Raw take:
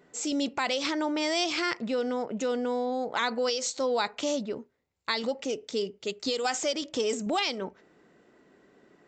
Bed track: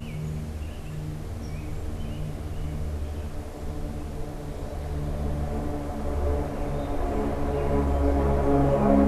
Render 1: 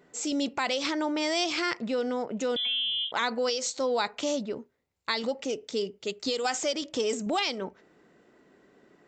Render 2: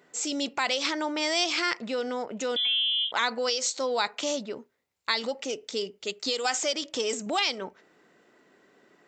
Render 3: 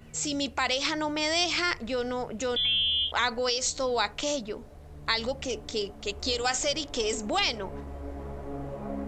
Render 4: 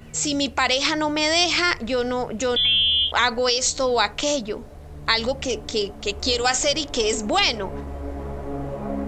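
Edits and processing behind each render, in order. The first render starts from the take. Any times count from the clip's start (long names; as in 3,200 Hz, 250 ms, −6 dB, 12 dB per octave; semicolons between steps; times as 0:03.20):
0:02.56–0:03.12: voice inversion scrambler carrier 3,700 Hz
high-pass filter 120 Hz 6 dB per octave; tilt shelving filter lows −3.5 dB, about 660 Hz
mix in bed track −15.5 dB
level +7 dB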